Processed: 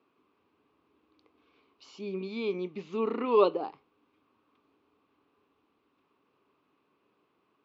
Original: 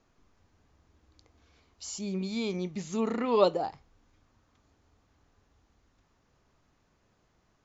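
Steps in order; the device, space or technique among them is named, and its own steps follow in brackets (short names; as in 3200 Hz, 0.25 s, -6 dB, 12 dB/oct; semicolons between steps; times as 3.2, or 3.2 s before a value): kitchen radio (speaker cabinet 220–3900 Hz, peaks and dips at 290 Hz +7 dB, 410 Hz +8 dB, 680 Hz -4 dB, 1100 Hz +8 dB, 1800 Hz -6 dB, 2600 Hz +7 dB); gain -3.5 dB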